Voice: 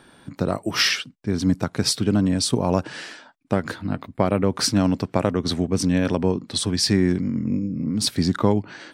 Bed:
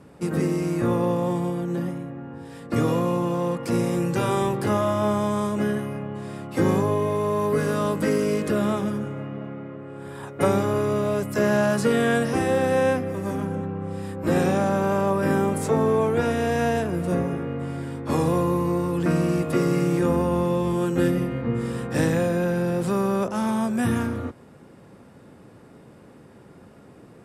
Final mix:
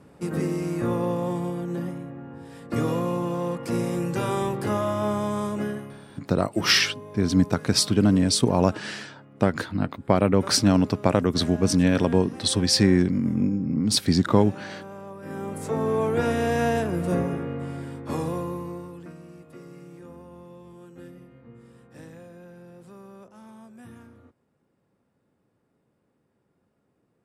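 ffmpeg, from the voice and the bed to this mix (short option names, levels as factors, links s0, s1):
-filter_complex "[0:a]adelay=5900,volume=1.06[s0];[1:a]volume=5.31,afade=t=out:st=5.53:d=0.52:silence=0.177828,afade=t=in:st=15.22:d=1.07:silence=0.133352,afade=t=out:st=17.19:d=1.95:silence=0.0749894[s1];[s0][s1]amix=inputs=2:normalize=0"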